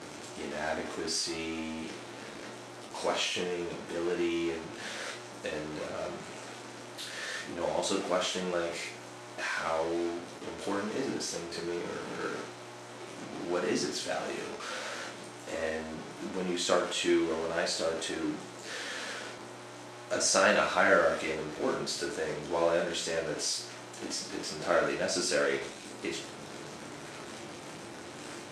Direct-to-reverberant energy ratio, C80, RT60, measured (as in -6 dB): -2.0 dB, 10.5 dB, 0.45 s